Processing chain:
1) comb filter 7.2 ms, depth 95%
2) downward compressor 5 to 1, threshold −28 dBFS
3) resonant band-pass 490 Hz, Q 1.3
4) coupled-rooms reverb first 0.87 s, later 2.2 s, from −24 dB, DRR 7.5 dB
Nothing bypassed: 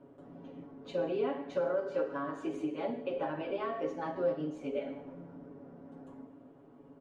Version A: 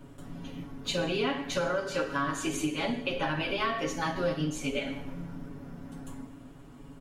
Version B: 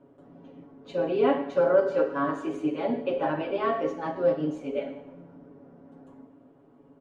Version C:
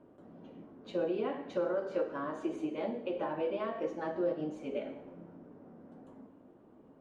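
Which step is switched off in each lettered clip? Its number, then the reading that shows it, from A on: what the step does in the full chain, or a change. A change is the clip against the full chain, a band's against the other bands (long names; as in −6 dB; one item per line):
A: 3, 4 kHz band +12.0 dB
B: 2, average gain reduction 4.0 dB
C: 1, change in momentary loudness spread +2 LU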